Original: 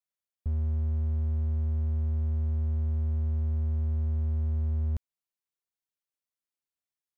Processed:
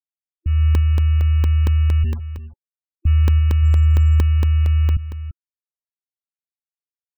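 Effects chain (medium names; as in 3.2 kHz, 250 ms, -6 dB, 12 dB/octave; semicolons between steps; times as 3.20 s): 2.04–3.05 s: high-pass 160 Hz 6 dB/octave; gate with hold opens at -27 dBFS; high-order bell 800 Hz -8 dB; saturation -25.5 dBFS, distortion -19 dB; bit crusher 8-bit; dynamic bell 380 Hz, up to -7 dB, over -56 dBFS, Q 1; delay 341 ms -14.5 dB; level rider gain up to 11.5 dB; 3.61–4.22 s: doubling 13 ms -10 dB; loudest bins only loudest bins 16; crackling interface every 0.23 s, samples 64, zero, from 0.75 s; trim +5.5 dB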